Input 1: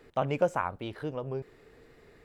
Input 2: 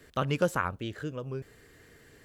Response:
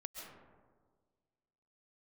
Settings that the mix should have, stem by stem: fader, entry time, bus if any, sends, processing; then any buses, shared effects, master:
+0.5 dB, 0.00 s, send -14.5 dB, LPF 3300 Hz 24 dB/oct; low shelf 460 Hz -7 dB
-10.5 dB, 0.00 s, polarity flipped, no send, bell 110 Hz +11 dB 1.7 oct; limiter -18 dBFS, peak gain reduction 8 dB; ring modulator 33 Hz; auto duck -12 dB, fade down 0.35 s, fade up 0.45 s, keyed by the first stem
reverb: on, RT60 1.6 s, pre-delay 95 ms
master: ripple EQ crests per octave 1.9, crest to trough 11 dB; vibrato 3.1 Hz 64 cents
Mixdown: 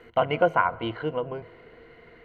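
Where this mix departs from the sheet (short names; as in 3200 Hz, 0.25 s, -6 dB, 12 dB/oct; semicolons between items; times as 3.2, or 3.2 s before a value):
stem 1 +0.5 dB -> +7.0 dB; master: missing vibrato 3.1 Hz 64 cents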